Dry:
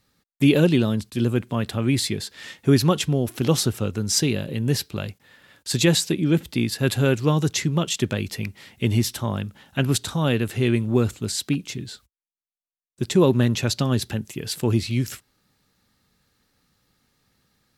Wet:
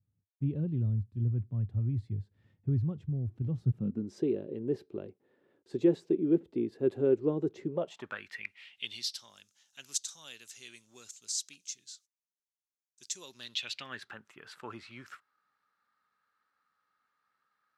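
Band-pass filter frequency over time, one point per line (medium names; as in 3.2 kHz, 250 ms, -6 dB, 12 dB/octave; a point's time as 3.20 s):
band-pass filter, Q 3.9
3.59 s 100 Hz
4.15 s 380 Hz
7.67 s 380 Hz
8.18 s 1.5 kHz
9.37 s 6.3 kHz
13.28 s 6.3 kHz
14.10 s 1.3 kHz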